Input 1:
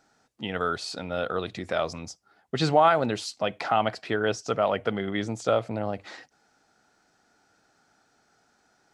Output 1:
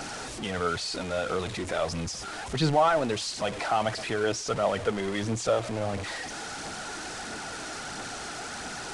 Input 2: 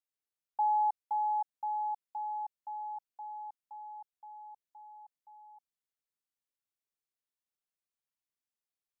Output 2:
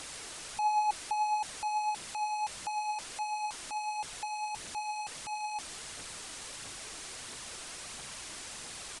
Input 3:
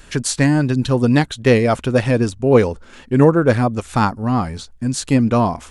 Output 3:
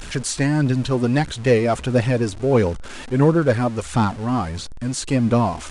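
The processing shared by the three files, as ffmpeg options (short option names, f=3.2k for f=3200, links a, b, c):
-filter_complex "[0:a]aeval=exprs='val(0)+0.5*0.0422*sgn(val(0))':c=same,aphaser=in_gain=1:out_gain=1:delay=3.4:decay=0.32:speed=1.5:type=triangular,acrossover=split=760[a][b];[b]asoftclip=type=tanh:threshold=-13.5dB[c];[a][c]amix=inputs=2:normalize=0,aresample=22050,aresample=44100,volume=-4dB"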